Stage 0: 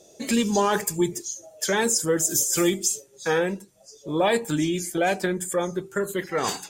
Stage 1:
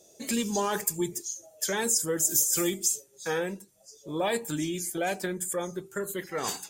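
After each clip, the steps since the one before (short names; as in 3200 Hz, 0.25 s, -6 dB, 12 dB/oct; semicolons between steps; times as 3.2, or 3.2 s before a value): high shelf 7800 Hz +11 dB; gain -7 dB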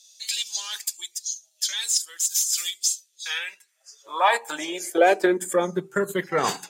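transient shaper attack 0 dB, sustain -6 dB; overdrive pedal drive 11 dB, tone 1900 Hz, clips at -10 dBFS; high-pass sweep 4000 Hz -> 140 Hz, 3.06–5.97; gain +6.5 dB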